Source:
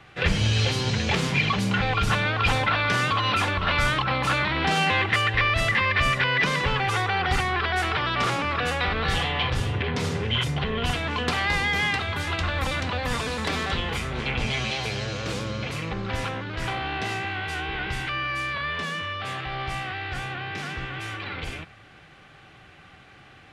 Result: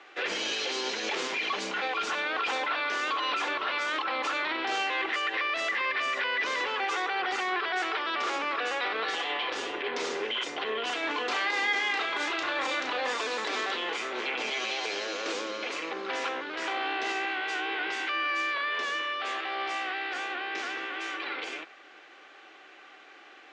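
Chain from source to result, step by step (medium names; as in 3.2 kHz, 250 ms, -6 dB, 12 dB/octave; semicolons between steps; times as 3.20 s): elliptic band-pass 330–6900 Hz, stop band 40 dB; peak limiter -22 dBFS, peak gain reduction 10 dB; 10.99–13.12 s: doubling 34 ms -6 dB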